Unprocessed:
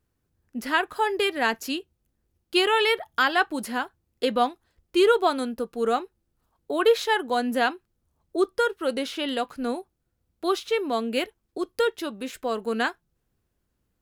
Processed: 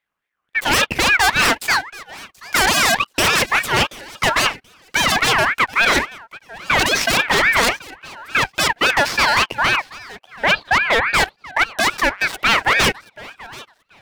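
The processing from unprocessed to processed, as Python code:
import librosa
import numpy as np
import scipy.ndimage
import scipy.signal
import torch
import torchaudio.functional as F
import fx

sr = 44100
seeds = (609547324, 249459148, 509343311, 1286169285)

p1 = fx.peak_eq(x, sr, hz=1000.0, db=11.0, octaves=2.9)
p2 = fx.leveller(p1, sr, passes=3)
p3 = fx.cheby_ripple(p2, sr, hz=2800.0, ripple_db=6, at=(9.76, 11.14))
p4 = 10.0 ** (-7.0 / 20.0) * (np.abs((p3 / 10.0 ** (-7.0 / 20.0) + 3.0) % 4.0 - 2.0) - 1.0)
p5 = p4 + fx.echo_thinned(p4, sr, ms=731, feedback_pct=22, hz=160.0, wet_db=-20, dry=0)
y = fx.ring_lfo(p5, sr, carrier_hz=1600.0, swing_pct=30, hz=3.6)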